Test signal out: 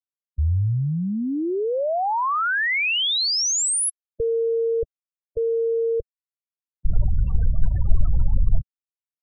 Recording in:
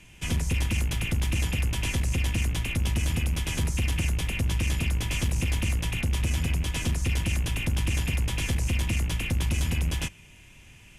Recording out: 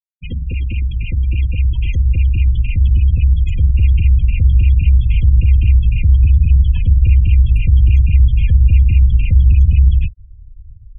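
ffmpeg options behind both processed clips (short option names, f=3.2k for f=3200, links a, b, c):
-af "asubboost=boost=10:cutoff=84,afftfilt=real='re*gte(hypot(re,im),0.0631)':imag='im*gte(hypot(re,im),0.0631)':win_size=1024:overlap=0.75,volume=2.5dB"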